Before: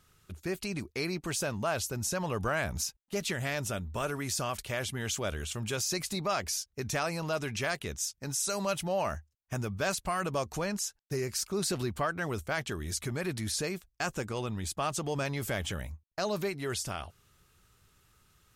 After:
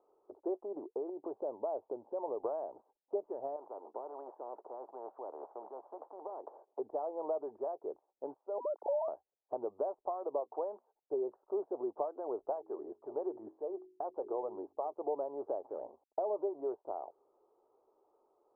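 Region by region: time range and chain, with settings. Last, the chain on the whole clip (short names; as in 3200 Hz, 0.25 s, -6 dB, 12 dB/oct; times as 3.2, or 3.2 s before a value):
1.09–2.43 tilt -2.5 dB/oct + compressor, threshold -34 dBFS + HPF 100 Hz
3.56–6.79 HPF 180 Hz 24 dB/oct + spectral compressor 4:1
8.58–9.08 sine-wave speech + HPF 340 Hz 24 dB/oct + compressor 2:1, threshold -35 dBFS
10.4–10.87 low shelf 270 Hz -12 dB + notches 60/120/180/240 Hz
12.4–14.93 high shelf 7800 Hz +9 dB + de-hum 46.19 Hz, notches 9 + phaser 1.8 Hz, feedback 27%
15.64–16.61 G.711 law mismatch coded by mu + LPF 11000 Hz
whole clip: inverse Chebyshev high-pass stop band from 190 Hz, stop band 40 dB; compressor 5:1, threshold -39 dBFS; steep low-pass 910 Hz 48 dB/oct; gain +8 dB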